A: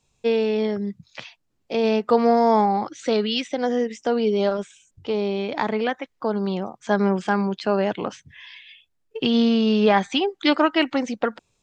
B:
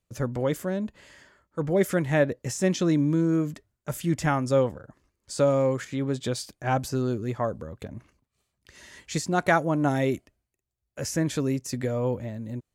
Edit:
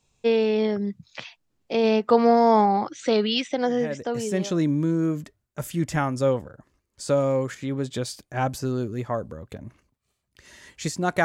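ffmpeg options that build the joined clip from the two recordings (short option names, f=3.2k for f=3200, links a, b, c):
-filter_complex "[0:a]apad=whole_dur=11.24,atrim=end=11.24,atrim=end=4.62,asetpts=PTS-STARTPTS[a];[1:a]atrim=start=1.9:end=9.54,asetpts=PTS-STARTPTS[b];[a][b]acrossfade=d=1.02:c1=tri:c2=tri"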